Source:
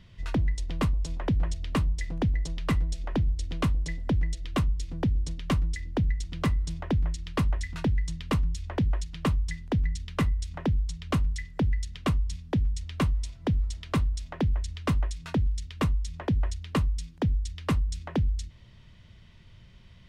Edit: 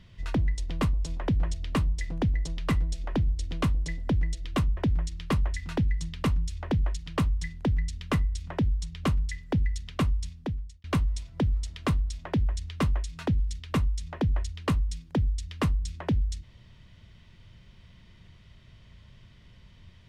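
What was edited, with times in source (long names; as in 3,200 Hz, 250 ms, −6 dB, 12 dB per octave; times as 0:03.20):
0:04.77–0:06.84: remove
0:12.24–0:12.91: fade out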